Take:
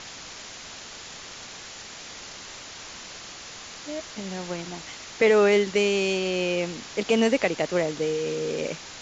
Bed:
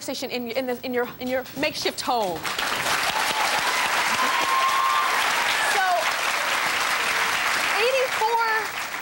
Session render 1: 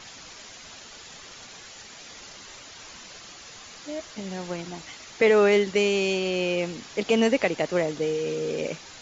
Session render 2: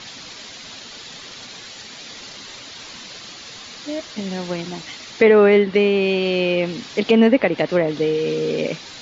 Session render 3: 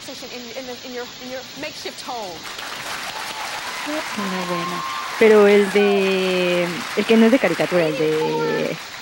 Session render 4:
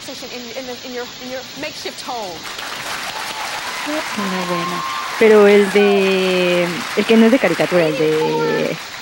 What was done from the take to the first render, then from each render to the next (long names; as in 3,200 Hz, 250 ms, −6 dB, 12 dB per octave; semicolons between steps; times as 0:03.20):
broadband denoise 7 dB, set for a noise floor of −42 dBFS
treble cut that deepens with the level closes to 2,200 Hz, closed at −19 dBFS; octave-band graphic EQ 125/250/500/1,000/2,000/4,000 Hz +6/+8/+4/+3/+4/+10 dB
mix in bed −6 dB
level +3.5 dB; brickwall limiter −1 dBFS, peak gain reduction 2.5 dB